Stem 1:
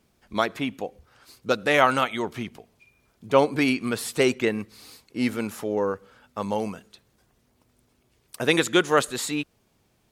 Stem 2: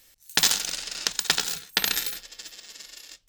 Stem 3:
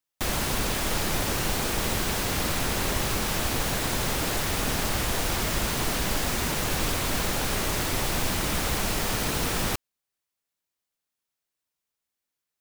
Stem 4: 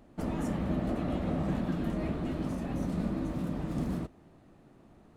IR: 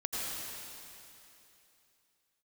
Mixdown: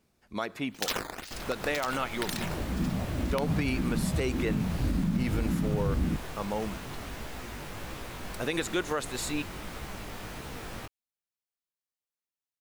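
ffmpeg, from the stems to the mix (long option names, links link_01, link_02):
-filter_complex "[0:a]bandreject=frequency=3200:width=17,volume=-5dB[link_01];[1:a]acrusher=samples=9:mix=1:aa=0.000001:lfo=1:lforange=14.4:lforate=2,adelay=450,volume=-9.5dB[link_02];[2:a]acrossover=split=3200[link_03][link_04];[link_04]acompressor=threshold=-36dB:ratio=4:attack=1:release=60[link_05];[link_03][link_05]amix=inputs=2:normalize=0,flanger=delay=15:depth=6.4:speed=1.6,adelay=1100,volume=-9dB[link_06];[3:a]asubboost=boost=7:cutoff=230,asplit=2[link_07][link_08];[link_08]afreqshift=-1.8[link_09];[link_07][link_09]amix=inputs=2:normalize=1,adelay=2100,volume=-0.5dB[link_10];[link_01][link_02][link_06][link_10]amix=inputs=4:normalize=0,aeval=exprs='(mod(2.66*val(0)+1,2)-1)/2.66':channel_layout=same,alimiter=limit=-19dB:level=0:latency=1:release=95"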